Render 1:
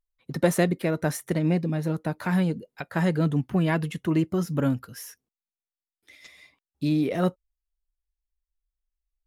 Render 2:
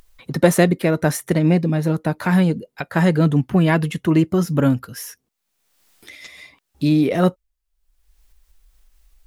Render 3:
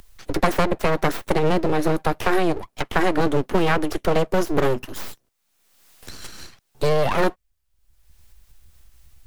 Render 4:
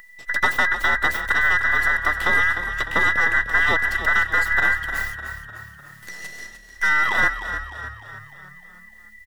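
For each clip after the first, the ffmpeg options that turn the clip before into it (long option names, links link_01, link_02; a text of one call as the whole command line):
ffmpeg -i in.wav -af "acompressor=mode=upward:threshold=-42dB:ratio=2.5,volume=7.5dB" out.wav
ffmpeg -i in.wav -filter_complex "[0:a]aeval=exprs='abs(val(0))':channel_layout=same,acrossover=split=160|2200[link_01][link_02][link_03];[link_01]acompressor=threshold=-28dB:ratio=4[link_04];[link_02]acompressor=threshold=-22dB:ratio=4[link_05];[link_03]acompressor=threshold=-39dB:ratio=4[link_06];[link_04][link_05][link_06]amix=inputs=3:normalize=0,volume=5dB" out.wav
ffmpeg -i in.wav -filter_complex "[0:a]afftfilt=real='real(if(between(b,1,1012),(2*floor((b-1)/92)+1)*92-b,b),0)':imag='imag(if(between(b,1,1012),(2*floor((b-1)/92)+1)*92-b,b),0)*if(between(b,1,1012),-1,1)':win_size=2048:overlap=0.75,asplit=2[link_01][link_02];[link_02]asplit=6[link_03][link_04][link_05][link_06][link_07][link_08];[link_03]adelay=302,afreqshift=-36,volume=-10dB[link_09];[link_04]adelay=604,afreqshift=-72,volume=-15.7dB[link_10];[link_05]adelay=906,afreqshift=-108,volume=-21.4dB[link_11];[link_06]adelay=1208,afreqshift=-144,volume=-27dB[link_12];[link_07]adelay=1510,afreqshift=-180,volume=-32.7dB[link_13];[link_08]adelay=1812,afreqshift=-216,volume=-38.4dB[link_14];[link_09][link_10][link_11][link_12][link_13][link_14]amix=inputs=6:normalize=0[link_15];[link_01][link_15]amix=inputs=2:normalize=0,volume=-2.5dB" out.wav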